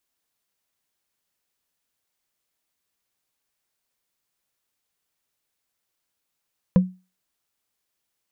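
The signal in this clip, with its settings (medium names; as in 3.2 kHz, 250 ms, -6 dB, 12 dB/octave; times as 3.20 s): wood hit, lowest mode 184 Hz, decay 0.29 s, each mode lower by 9 dB, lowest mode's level -8.5 dB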